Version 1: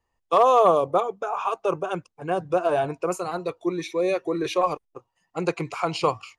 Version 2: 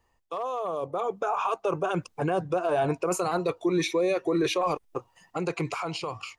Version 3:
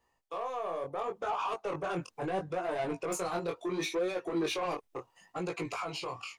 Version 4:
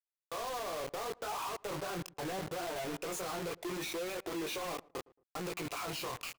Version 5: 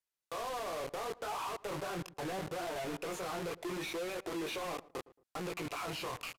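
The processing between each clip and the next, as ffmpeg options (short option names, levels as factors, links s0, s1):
-af "areverse,acompressor=threshold=0.0447:ratio=6,areverse,alimiter=level_in=2.37:limit=0.0631:level=0:latency=1:release=200,volume=0.422,dynaudnorm=f=240:g=9:m=2.24,volume=2.24"
-af "lowshelf=f=130:g=-10,asoftclip=type=tanh:threshold=0.0562,flanger=delay=16.5:depth=7.2:speed=0.72"
-filter_complex "[0:a]alimiter=level_in=3.35:limit=0.0631:level=0:latency=1:release=10,volume=0.299,acrusher=bits=6:mix=0:aa=0.000001,asplit=2[s0][s1];[s1]adelay=112,lowpass=f=990:p=1,volume=0.0841,asplit=2[s2][s3];[s3]adelay=112,lowpass=f=990:p=1,volume=0.3[s4];[s0][s2][s4]amix=inputs=3:normalize=0,volume=1.12"
-filter_complex "[0:a]aresample=32000,aresample=44100,acrossover=split=3900[s0][s1];[s1]acompressor=threshold=0.00355:ratio=4:attack=1:release=60[s2];[s0][s2]amix=inputs=2:normalize=0,asoftclip=type=tanh:threshold=0.0133,volume=1.5"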